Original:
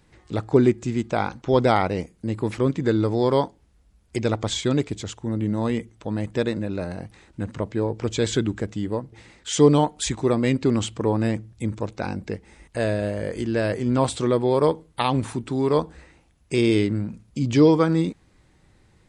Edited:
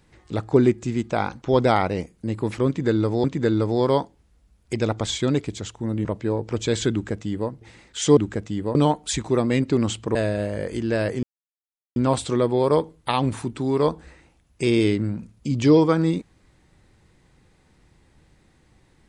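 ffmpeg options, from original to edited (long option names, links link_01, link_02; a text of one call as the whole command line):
ffmpeg -i in.wav -filter_complex "[0:a]asplit=7[link_01][link_02][link_03][link_04][link_05][link_06][link_07];[link_01]atrim=end=3.242[link_08];[link_02]atrim=start=2.668:end=5.482[link_09];[link_03]atrim=start=7.558:end=9.682[link_10];[link_04]atrim=start=8.428:end=9.012[link_11];[link_05]atrim=start=9.678:end=11.082[link_12];[link_06]atrim=start=12.788:end=13.87,asetpts=PTS-STARTPTS,afade=type=out:start_time=1.078:duration=0.004:curve=hsin,apad=pad_dur=0.73[link_13];[link_07]atrim=start=13.87,asetpts=PTS-STARTPTS,afade=type=in:duration=0.004:curve=hsin[link_14];[link_08][link_09]acrossfade=duration=0.004:curve1=hsin:curve2=hsin[link_15];[link_15][link_10]acrossfade=duration=0.004:curve1=hsin:curve2=hsin[link_16];[link_16][link_11]acrossfade=duration=0.004:curve1=hsin:curve2=hsin[link_17];[link_17][link_12]acrossfade=duration=0.004:curve1=hsin:curve2=hsin[link_18];[link_13][link_14]concat=n=2:v=0:a=1[link_19];[link_18][link_19]acrossfade=duration=0.004:curve1=hsin:curve2=hsin" out.wav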